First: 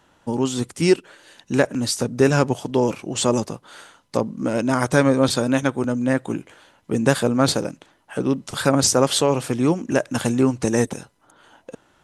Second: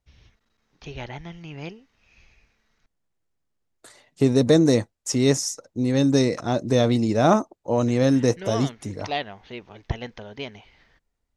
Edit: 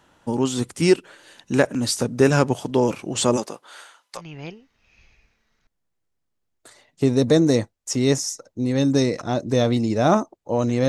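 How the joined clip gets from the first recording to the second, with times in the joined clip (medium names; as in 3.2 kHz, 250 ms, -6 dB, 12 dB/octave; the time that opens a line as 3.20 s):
first
3.36–4.22 s: high-pass 270 Hz -> 1.1 kHz
4.18 s: go over to second from 1.37 s, crossfade 0.08 s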